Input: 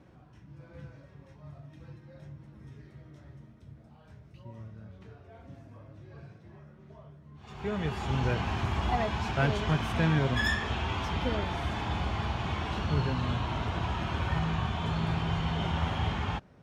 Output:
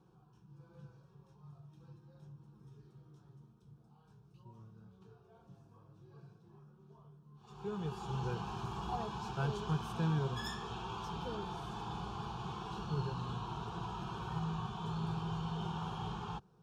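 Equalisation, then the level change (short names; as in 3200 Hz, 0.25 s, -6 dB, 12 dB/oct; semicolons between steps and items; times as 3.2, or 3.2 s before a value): fixed phaser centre 400 Hz, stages 8; -6.0 dB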